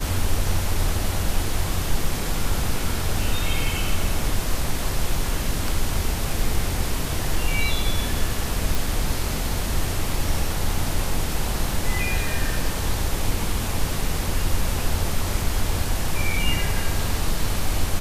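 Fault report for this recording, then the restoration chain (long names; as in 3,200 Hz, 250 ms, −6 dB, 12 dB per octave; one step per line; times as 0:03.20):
0:08.75: click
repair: click removal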